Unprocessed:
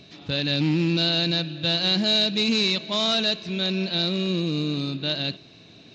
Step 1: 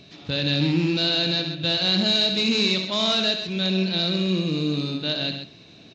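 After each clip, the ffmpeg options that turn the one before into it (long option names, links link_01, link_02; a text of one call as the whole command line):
ffmpeg -i in.wav -af "aecho=1:1:69|133:0.376|0.355" out.wav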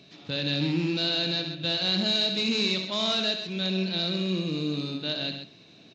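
ffmpeg -i in.wav -af "highpass=120,volume=-4.5dB" out.wav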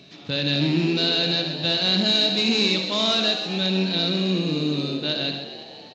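ffmpeg -i in.wav -filter_complex "[0:a]asplit=7[link_01][link_02][link_03][link_04][link_05][link_06][link_07];[link_02]adelay=251,afreqshift=90,volume=-13dB[link_08];[link_03]adelay=502,afreqshift=180,volume=-18dB[link_09];[link_04]adelay=753,afreqshift=270,volume=-23.1dB[link_10];[link_05]adelay=1004,afreqshift=360,volume=-28.1dB[link_11];[link_06]adelay=1255,afreqshift=450,volume=-33.1dB[link_12];[link_07]adelay=1506,afreqshift=540,volume=-38.2dB[link_13];[link_01][link_08][link_09][link_10][link_11][link_12][link_13]amix=inputs=7:normalize=0,volume=5dB" out.wav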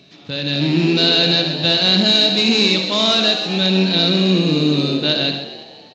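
ffmpeg -i in.wav -af "dynaudnorm=framelen=110:gausssize=13:maxgain=10dB" out.wav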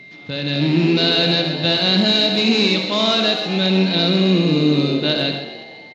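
ffmpeg -i in.wav -filter_complex "[0:a]aemphasis=mode=reproduction:type=cd,asplit=2[link_01][link_02];[link_02]adelay=100,highpass=300,lowpass=3400,asoftclip=type=hard:threshold=-11dB,volume=-13dB[link_03];[link_01][link_03]amix=inputs=2:normalize=0,aeval=exprs='val(0)+0.0112*sin(2*PI*2100*n/s)':channel_layout=same" out.wav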